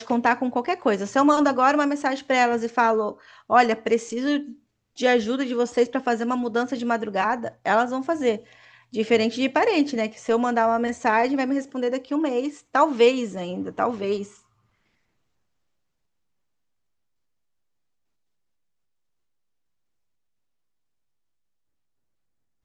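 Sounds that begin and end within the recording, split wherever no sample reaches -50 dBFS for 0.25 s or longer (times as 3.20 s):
4.96–14.40 s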